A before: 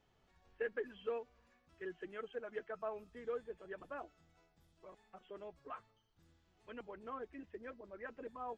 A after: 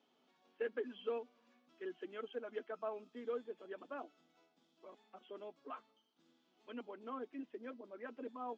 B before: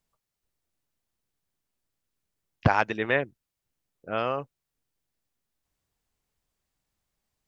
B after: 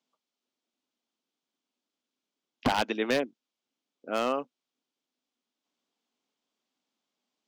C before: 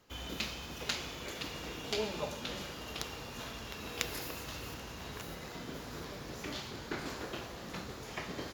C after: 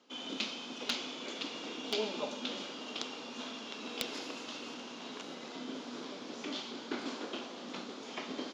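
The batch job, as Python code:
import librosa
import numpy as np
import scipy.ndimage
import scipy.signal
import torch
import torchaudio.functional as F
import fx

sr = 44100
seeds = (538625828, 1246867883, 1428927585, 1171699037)

y = fx.cabinet(x, sr, low_hz=230.0, low_slope=24, high_hz=6700.0, hz=(250.0, 1800.0, 3300.0), db=(9, -6, 5))
y = 10.0 ** (-17.0 / 20.0) * (np.abs((y / 10.0 ** (-17.0 / 20.0) + 3.0) % 4.0 - 2.0) - 1.0)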